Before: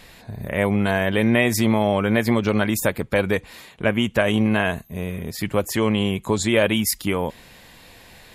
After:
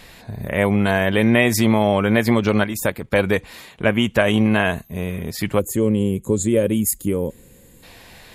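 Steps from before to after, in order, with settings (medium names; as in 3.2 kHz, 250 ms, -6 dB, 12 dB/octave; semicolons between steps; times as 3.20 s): 2.64–3.13 s: level held to a coarse grid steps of 10 dB; 5.59–7.83 s: time-frequency box 560–6400 Hz -15 dB; trim +2.5 dB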